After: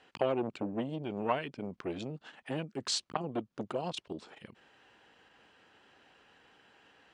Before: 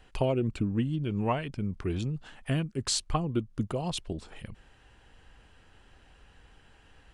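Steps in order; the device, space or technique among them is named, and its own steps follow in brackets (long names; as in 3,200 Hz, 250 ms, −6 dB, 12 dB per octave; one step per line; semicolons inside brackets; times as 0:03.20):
public-address speaker with an overloaded transformer (saturating transformer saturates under 600 Hz; band-pass filter 250–5,800 Hz)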